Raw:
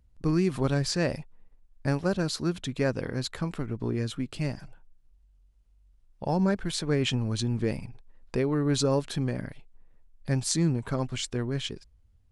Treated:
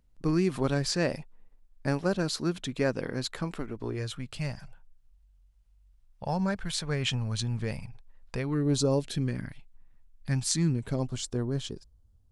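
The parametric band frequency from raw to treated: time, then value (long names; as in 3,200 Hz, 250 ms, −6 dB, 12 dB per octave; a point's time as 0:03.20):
parametric band −12.5 dB 1 octave
0:03.36 74 Hz
0:04.24 320 Hz
0:08.40 320 Hz
0:08.77 2,200 Hz
0:09.49 470 Hz
0:10.57 470 Hz
0:11.15 2,200 Hz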